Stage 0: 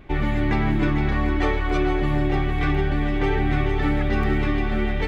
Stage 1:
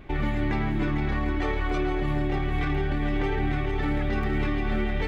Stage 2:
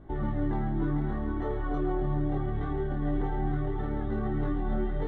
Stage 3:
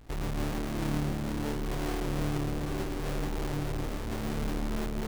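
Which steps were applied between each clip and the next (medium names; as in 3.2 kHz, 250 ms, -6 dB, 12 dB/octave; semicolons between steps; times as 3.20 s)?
peak limiter -18 dBFS, peak gain reduction 8 dB
boxcar filter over 18 samples; chorus 0.74 Hz, delay 18 ms, depth 3.8 ms
square wave that keeps the level; feedback echo behind a low-pass 170 ms, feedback 80%, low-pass 510 Hz, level -6 dB; trim -7.5 dB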